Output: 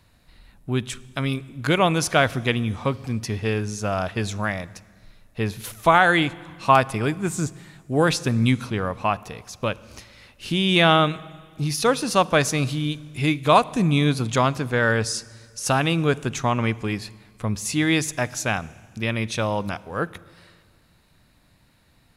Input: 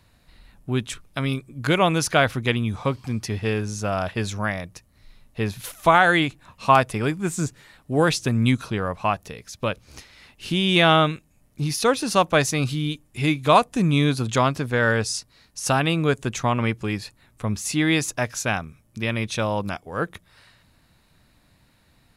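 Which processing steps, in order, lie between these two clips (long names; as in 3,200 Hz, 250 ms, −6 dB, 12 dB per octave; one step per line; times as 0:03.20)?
on a send: low-shelf EQ 210 Hz +10 dB + convolution reverb RT60 1.8 s, pre-delay 36 ms, DRR 20 dB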